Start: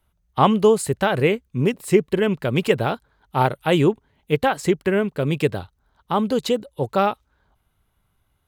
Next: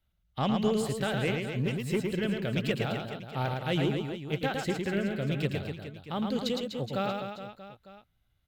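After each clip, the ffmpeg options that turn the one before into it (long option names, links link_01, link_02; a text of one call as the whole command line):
ffmpeg -i in.wav -filter_complex "[0:a]equalizer=frequency=400:width_type=o:width=0.67:gain=-6,equalizer=frequency=1000:width_type=o:width=0.67:gain=-10,equalizer=frequency=4000:width_type=o:width=0.67:gain=4,equalizer=frequency=10000:width_type=o:width=0.67:gain=-9,asoftclip=type=tanh:threshold=-11.5dB,asplit=2[link_01][link_02];[link_02]aecho=0:1:110|247.5|419.4|634.2|902.8:0.631|0.398|0.251|0.158|0.1[link_03];[link_01][link_03]amix=inputs=2:normalize=0,volume=-8dB" out.wav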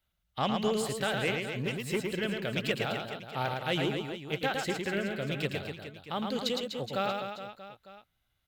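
ffmpeg -i in.wav -af "lowshelf=frequency=350:gain=-9.5,volume=2.5dB" out.wav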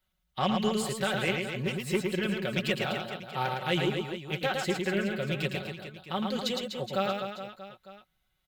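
ffmpeg -i in.wav -af "aecho=1:1:5.4:0.65" out.wav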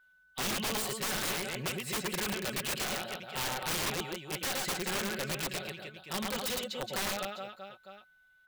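ffmpeg -i in.wav -af "lowshelf=frequency=330:gain=-8,aeval=exprs='val(0)+0.000794*sin(2*PI*1500*n/s)':channel_layout=same,aeval=exprs='(mod(23.7*val(0)+1,2)-1)/23.7':channel_layout=same" out.wav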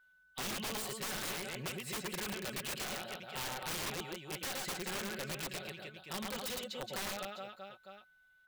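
ffmpeg -i in.wav -af "acompressor=threshold=-40dB:ratio=1.5,volume=-2.5dB" out.wav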